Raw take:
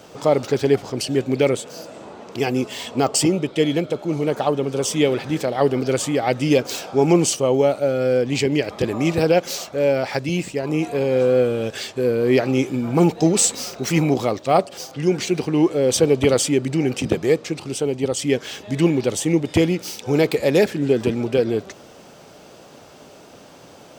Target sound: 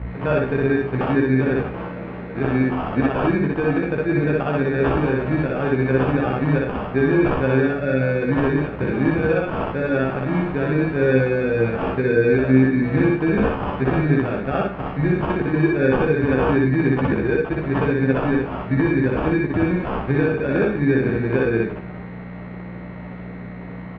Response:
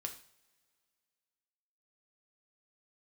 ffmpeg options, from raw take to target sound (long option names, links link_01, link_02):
-filter_complex "[0:a]aeval=exprs='val(0)+0.0282*(sin(2*PI*60*n/s)+sin(2*PI*2*60*n/s)/2+sin(2*PI*3*60*n/s)/3+sin(2*PI*4*60*n/s)/4+sin(2*PI*5*60*n/s)/5)':channel_layout=same,highpass=54,equalizer=frequency=780:width=0.72:gain=-8.5,alimiter=limit=-16.5dB:level=0:latency=1:release=318,acrusher=samples=22:mix=1:aa=0.000001,lowpass=frequency=2300:width=0.5412,lowpass=frequency=2300:width=1.3066,asplit=2[link_01][link_02];[link_02]adelay=15,volume=-4.5dB[link_03];[link_01][link_03]amix=inputs=2:normalize=0,asplit=2[link_04][link_05];[1:a]atrim=start_sample=2205,adelay=61[link_06];[link_05][link_06]afir=irnorm=-1:irlink=0,volume=2.5dB[link_07];[link_04][link_07]amix=inputs=2:normalize=0,volume=4.5dB"